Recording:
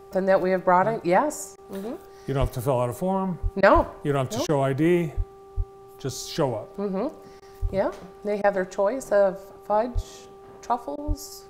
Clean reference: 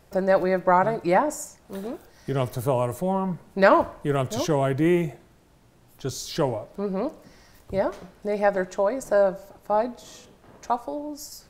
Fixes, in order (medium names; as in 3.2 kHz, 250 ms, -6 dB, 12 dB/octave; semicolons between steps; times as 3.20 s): de-hum 391.9 Hz, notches 3; de-plosive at 2.40/3.42/3.74/5.16/5.56/7.61/9.94/11.07 s; interpolate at 1.56/3.61/4.47/7.40/8.42/10.96 s, 18 ms